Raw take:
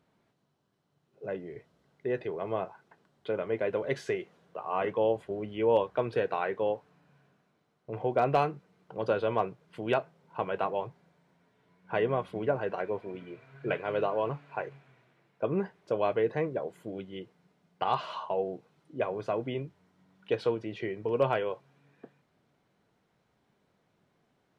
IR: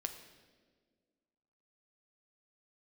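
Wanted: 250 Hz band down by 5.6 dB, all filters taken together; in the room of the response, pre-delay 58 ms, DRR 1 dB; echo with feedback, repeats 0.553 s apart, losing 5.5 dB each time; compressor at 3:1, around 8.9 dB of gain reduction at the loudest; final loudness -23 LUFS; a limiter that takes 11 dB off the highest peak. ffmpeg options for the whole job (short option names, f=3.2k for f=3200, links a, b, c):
-filter_complex "[0:a]equalizer=f=250:t=o:g=-9,acompressor=threshold=-34dB:ratio=3,alimiter=level_in=7dB:limit=-24dB:level=0:latency=1,volume=-7dB,aecho=1:1:553|1106|1659|2212|2765|3318|3871:0.531|0.281|0.149|0.079|0.0419|0.0222|0.0118,asplit=2[a][b];[1:a]atrim=start_sample=2205,adelay=58[c];[b][c]afir=irnorm=-1:irlink=0,volume=0dB[d];[a][d]amix=inputs=2:normalize=0,volume=17dB"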